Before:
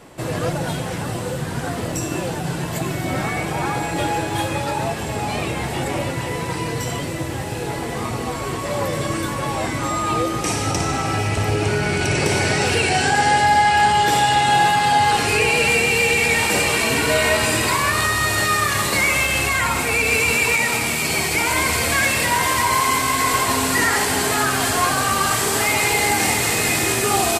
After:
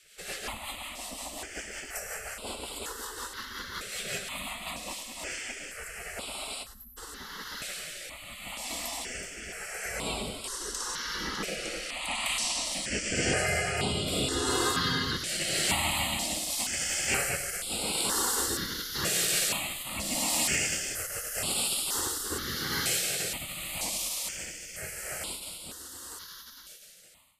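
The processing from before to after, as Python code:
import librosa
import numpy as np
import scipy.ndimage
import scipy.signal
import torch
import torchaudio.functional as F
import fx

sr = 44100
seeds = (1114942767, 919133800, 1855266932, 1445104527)

p1 = fx.fade_out_tail(x, sr, length_s=6.35)
p2 = fx.spec_gate(p1, sr, threshold_db=-15, keep='weak')
p3 = fx.rotary_switch(p2, sr, hz=5.5, then_hz=0.85, switch_at_s=4.51)
p4 = fx.spec_erase(p3, sr, start_s=6.64, length_s=0.33, low_hz=240.0, high_hz=11000.0)
p5 = p4 + fx.echo_feedback(p4, sr, ms=103, feedback_pct=22, wet_db=-11.5, dry=0)
y = fx.phaser_held(p5, sr, hz=2.1, low_hz=260.0, high_hz=6100.0)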